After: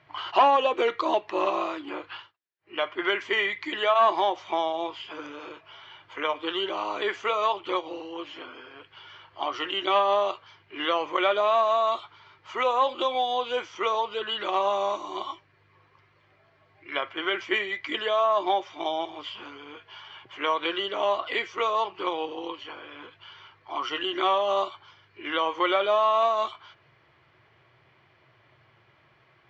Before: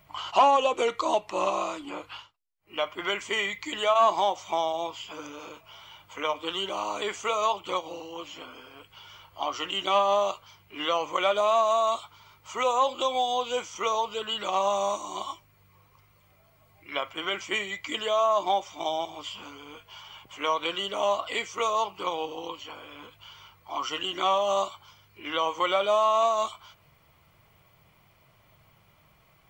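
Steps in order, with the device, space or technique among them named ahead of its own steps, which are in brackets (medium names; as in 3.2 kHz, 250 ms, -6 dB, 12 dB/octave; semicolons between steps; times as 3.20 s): guitar cabinet (cabinet simulation 86–4600 Hz, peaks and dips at 120 Hz +7 dB, 180 Hz -8 dB, 360 Hz +9 dB, 1.7 kHz +10 dB); bass shelf 150 Hz -5 dB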